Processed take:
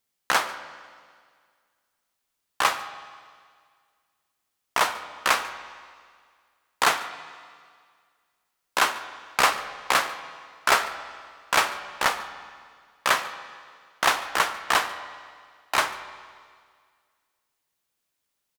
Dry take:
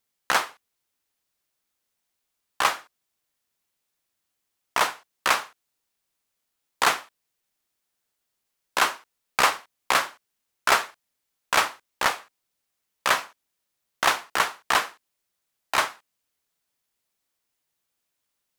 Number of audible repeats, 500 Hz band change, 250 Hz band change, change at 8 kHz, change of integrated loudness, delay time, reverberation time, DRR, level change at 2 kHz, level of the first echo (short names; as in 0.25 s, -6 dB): 1, +0.5 dB, +0.5 dB, 0.0 dB, 0.0 dB, 0.144 s, 1.9 s, 10.5 dB, +0.5 dB, -20.5 dB